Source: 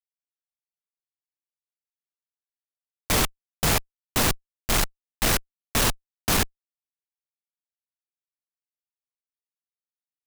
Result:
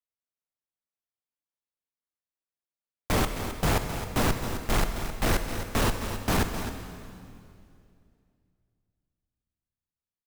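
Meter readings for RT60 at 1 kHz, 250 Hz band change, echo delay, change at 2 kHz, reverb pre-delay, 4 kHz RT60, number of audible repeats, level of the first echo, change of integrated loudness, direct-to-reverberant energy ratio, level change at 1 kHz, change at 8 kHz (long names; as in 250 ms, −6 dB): 2.3 s, +1.0 dB, 263 ms, −3.5 dB, 23 ms, 2.2 s, 1, −10.5 dB, −4.0 dB, 5.5 dB, −1.0 dB, −9.0 dB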